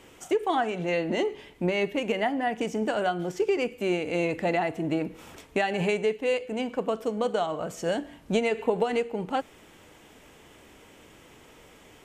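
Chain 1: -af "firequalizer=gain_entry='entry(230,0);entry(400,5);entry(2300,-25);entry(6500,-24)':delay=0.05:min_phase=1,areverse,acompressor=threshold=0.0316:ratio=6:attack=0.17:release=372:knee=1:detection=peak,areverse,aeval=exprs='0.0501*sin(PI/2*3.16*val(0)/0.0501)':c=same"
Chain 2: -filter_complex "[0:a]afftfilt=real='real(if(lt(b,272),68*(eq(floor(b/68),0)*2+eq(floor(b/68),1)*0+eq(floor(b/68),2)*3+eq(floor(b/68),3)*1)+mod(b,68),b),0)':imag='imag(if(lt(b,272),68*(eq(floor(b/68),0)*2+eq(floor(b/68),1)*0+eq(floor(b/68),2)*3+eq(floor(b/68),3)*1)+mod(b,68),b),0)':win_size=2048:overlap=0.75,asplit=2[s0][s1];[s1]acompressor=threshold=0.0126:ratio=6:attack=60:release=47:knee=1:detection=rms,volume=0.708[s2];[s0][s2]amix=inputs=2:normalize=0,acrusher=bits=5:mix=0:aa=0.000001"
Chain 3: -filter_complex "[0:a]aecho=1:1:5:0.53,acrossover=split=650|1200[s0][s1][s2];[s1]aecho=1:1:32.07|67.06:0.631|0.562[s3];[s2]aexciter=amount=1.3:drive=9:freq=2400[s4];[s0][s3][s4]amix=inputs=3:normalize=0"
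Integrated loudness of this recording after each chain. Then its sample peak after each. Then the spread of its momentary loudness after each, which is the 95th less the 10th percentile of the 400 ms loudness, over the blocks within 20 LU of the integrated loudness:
-31.5 LUFS, -23.5 LUFS, -26.0 LUFS; -26.0 dBFS, -10.0 dBFS, -9.0 dBFS; 10 LU, 4 LU, 7 LU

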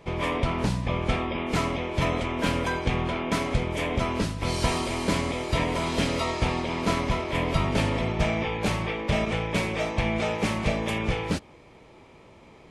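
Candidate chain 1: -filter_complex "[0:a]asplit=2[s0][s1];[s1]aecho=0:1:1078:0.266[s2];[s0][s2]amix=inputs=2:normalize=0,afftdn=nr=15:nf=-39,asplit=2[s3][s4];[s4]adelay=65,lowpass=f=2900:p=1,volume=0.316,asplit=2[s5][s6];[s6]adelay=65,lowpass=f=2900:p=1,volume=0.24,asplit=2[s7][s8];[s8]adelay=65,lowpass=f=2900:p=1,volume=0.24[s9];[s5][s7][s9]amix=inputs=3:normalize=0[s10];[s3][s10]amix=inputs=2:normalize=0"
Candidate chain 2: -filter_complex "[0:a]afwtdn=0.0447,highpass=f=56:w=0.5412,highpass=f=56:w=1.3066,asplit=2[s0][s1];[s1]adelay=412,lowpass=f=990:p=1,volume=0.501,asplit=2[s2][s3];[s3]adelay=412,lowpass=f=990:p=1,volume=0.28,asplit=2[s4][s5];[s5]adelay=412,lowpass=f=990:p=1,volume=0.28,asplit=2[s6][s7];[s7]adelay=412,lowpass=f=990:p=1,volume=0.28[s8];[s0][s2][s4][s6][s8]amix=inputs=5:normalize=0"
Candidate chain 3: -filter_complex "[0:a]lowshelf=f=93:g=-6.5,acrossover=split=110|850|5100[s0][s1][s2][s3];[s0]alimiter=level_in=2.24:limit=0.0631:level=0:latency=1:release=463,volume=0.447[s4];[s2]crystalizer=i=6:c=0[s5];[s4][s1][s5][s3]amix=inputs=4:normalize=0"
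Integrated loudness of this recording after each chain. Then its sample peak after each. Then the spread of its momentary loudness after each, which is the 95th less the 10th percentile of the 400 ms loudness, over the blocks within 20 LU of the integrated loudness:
-26.5 LUFS, -28.0 LUFS, -24.0 LUFS; -10.0 dBFS, -12.5 dBFS, -8.0 dBFS; 3 LU, 2 LU, 3 LU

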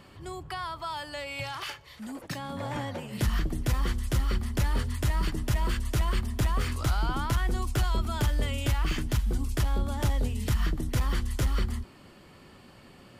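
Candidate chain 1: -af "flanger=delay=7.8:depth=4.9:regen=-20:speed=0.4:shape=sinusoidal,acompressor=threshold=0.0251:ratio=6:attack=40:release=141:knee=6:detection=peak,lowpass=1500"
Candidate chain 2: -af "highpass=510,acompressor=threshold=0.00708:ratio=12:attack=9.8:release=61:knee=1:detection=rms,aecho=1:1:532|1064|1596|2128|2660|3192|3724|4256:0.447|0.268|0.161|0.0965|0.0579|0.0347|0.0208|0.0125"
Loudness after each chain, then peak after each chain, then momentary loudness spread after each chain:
-38.0 LUFS, -44.5 LUFS; -23.0 dBFS, -25.0 dBFS; 9 LU, 4 LU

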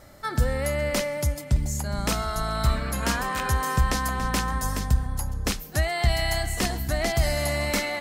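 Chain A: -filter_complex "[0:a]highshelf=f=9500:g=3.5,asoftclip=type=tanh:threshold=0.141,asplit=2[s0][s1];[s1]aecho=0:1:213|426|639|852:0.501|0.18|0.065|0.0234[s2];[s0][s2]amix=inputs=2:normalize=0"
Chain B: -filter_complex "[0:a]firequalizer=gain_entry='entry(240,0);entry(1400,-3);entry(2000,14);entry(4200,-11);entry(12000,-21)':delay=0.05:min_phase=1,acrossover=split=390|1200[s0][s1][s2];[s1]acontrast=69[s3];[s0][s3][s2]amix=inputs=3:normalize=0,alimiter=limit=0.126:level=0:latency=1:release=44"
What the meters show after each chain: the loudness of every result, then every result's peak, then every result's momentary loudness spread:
-26.0 LUFS, -26.5 LUFS; -14.0 dBFS, -18.0 dBFS; 3 LU, 6 LU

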